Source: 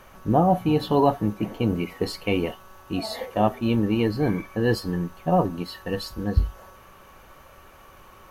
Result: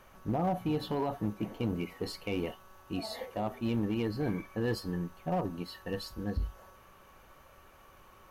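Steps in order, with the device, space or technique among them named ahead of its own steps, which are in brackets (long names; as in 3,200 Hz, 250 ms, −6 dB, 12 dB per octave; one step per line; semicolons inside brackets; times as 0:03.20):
limiter into clipper (brickwall limiter −14 dBFS, peak gain reduction 7.5 dB; hard clipping −16.5 dBFS, distortion −22 dB)
level −8 dB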